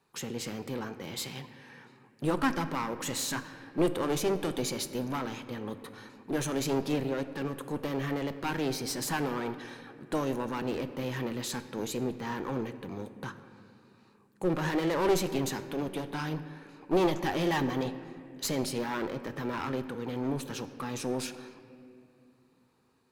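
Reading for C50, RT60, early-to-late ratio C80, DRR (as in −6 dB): 12.0 dB, 2.5 s, 12.5 dB, 9.5 dB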